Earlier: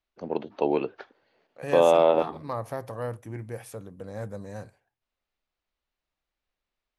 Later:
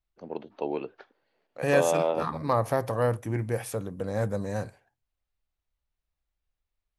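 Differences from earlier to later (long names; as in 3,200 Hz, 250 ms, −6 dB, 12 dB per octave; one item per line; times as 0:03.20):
first voice −6.5 dB
second voice +7.5 dB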